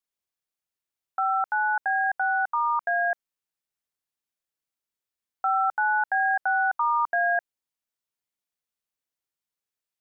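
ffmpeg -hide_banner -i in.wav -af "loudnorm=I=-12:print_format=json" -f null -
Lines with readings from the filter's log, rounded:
"input_i" : "-24.7",
"input_tp" : "-16.8",
"input_lra" : "7.6",
"input_thresh" : "-34.8",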